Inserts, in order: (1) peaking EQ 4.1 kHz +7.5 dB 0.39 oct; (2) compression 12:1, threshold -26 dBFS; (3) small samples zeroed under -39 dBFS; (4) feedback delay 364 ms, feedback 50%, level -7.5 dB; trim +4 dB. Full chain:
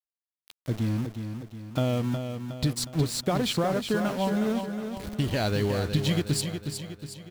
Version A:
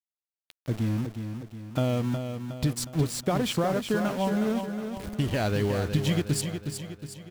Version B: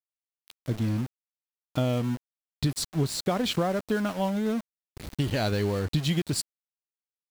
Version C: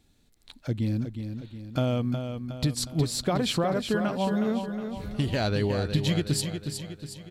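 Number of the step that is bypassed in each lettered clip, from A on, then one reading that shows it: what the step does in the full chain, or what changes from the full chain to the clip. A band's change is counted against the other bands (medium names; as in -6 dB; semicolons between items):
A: 1, 4 kHz band -3.0 dB; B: 4, echo-to-direct -6.0 dB to none; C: 3, distortion -17 dB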